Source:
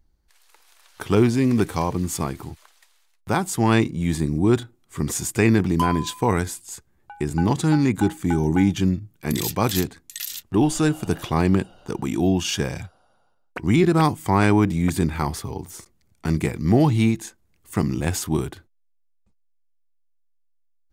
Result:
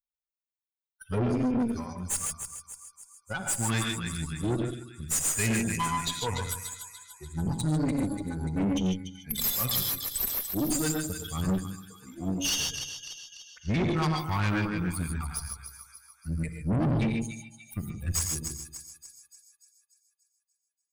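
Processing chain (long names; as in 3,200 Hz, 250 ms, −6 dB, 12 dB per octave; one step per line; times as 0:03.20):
spectral dynamics exaggerated over time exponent 3
parametric band 620 Hz −10 dB 2.1 octaves
in parallel at 0 dB: downward compressor, threshold −42 dBFS, peak gain reduction 20.5 dB
on the sum: high-shelf EQ 6,200 Hz +8.5 dB
on a send: echo with a time of its own for lows and highs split 1,100 Hz, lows 90 ms, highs 292 ms, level −10 dB
on the sum: reverb whose tail is shaped and stops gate 170 ms rising, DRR 3.5 dB
tube saturation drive 28 dB, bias 0.7
level +5 dB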